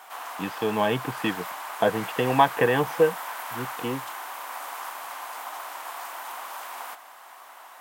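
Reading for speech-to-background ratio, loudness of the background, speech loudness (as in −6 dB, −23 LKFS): 10.5 dB, −35.5 LKFS, −25.0 LKFS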